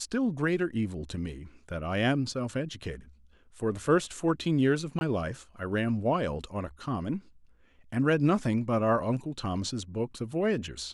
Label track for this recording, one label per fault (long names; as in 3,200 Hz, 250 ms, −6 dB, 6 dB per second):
4.990000	5.010000	drop-out 21 ms